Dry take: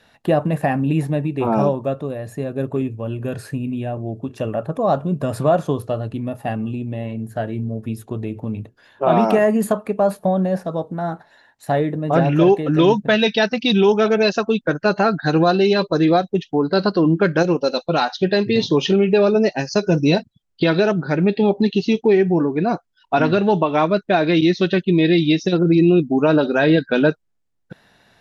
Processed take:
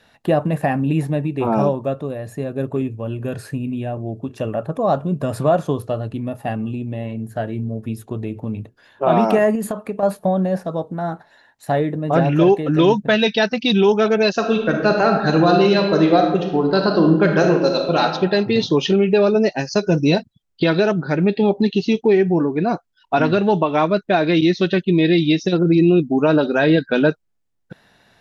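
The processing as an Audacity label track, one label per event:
9.550000	10.030000	compression, threshold -19 dBFS
14.320000	18.020000	reverb throw, RT60 1.1 s, DRR 2.5 dB

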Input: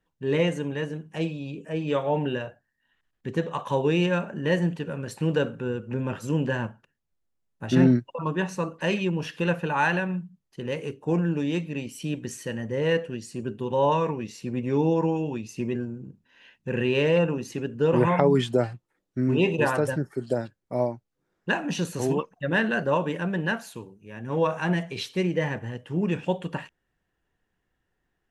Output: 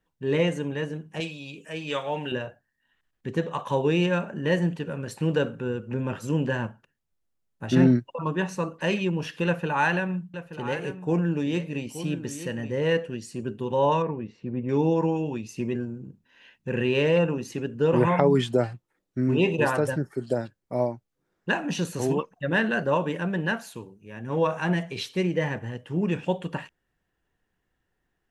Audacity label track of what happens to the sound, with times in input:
1.200000	2.320000	tilt shelf lows -8 dB, about 1.2 kHz
9.460000	12.770000	delay 877 ms -12 dB
14.020000	14.690000	tape spacing loss at 10 kHz 39 dB

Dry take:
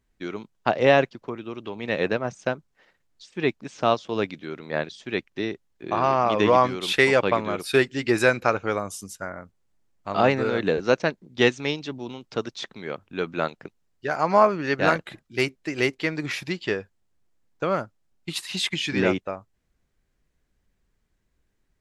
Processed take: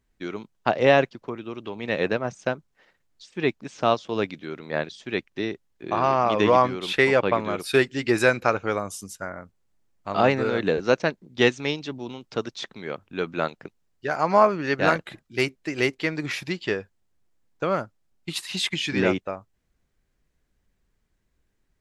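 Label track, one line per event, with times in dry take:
6.620000	7.400000	treble shelf 4.6 kHz -9 dB

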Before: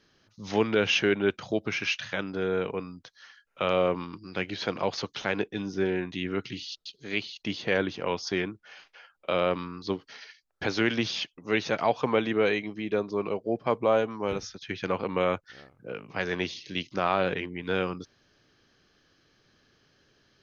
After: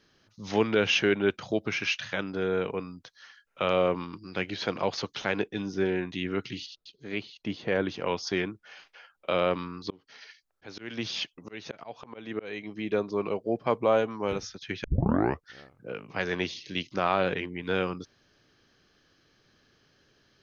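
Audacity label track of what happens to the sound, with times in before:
6.660000	7.860000	treble shelf 2.3 kHz -10.5 dB
9.870000	12.870000	slow attack 430 ms
14.840000	14.840000	tape start 0.64 s

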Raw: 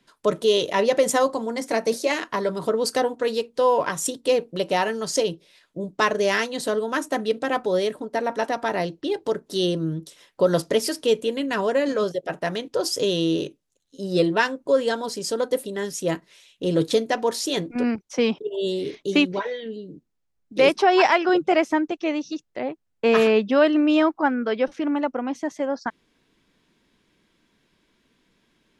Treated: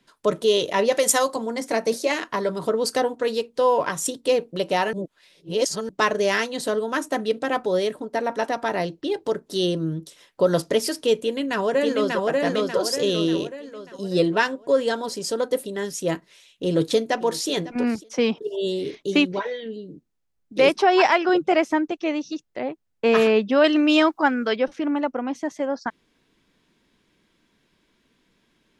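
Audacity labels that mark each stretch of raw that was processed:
0.920000	1.360000	tilt EQ +2.5 dB/octave
4.930000	5.890000	reverse
11.140000	12.260000	echo throw 590 ms, feedback 45%, level -1.5 dB
16.650000	17.480000	echo throw 550 ms, feedback 15%, level -18 dB
23.640000	24.560000	treble shelf 2.3 kHz +12 dB

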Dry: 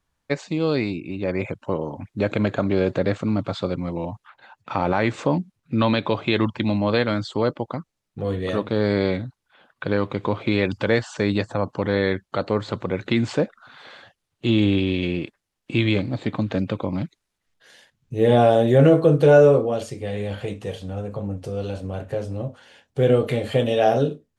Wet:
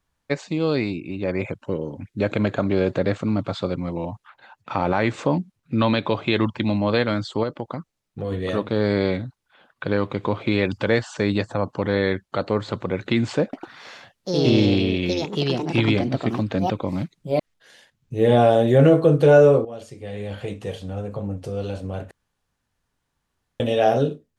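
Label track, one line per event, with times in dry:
1.660000	2.210000	high-order bell 870 Hz -10 dB 1.2 oct
7.430000	8.320000	compression 2.5:1, threshold -23 dBFS
13.430000	18.300000	ever faster or slower copies 101 ms, each echo +4 st, echoes 2
19.650000	20.620000	fade in, from -13.5 dB
22.110000	23.600000	room tone

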